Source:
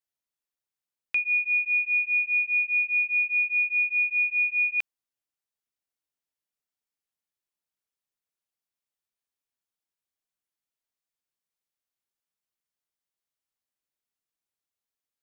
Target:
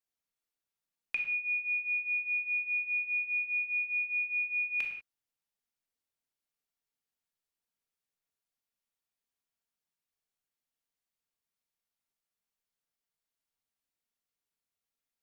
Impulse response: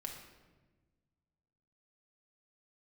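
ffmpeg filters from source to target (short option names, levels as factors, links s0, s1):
-filter_complex "[1:a]atrim=start_sample=2205,afade=t=out:st=0.27:d=0.01,atrim=end_sample=12348,asetrate=48510,aresample=44100[s0];[0:a][s0]afir=irnorm=-1:irlink=0,volume=1.33"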